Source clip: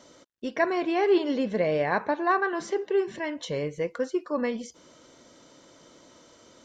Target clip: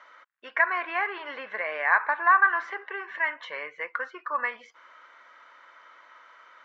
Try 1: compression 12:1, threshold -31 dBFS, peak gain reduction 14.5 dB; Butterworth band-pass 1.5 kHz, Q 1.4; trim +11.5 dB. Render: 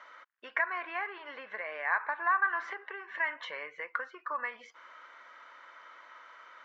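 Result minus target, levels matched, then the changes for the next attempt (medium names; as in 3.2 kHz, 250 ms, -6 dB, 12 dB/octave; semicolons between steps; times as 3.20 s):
compression: peak gain reduction +8.5 dB
change: compression 12:1, threshold -21.5 dBFS, peak gain reduction 6 dB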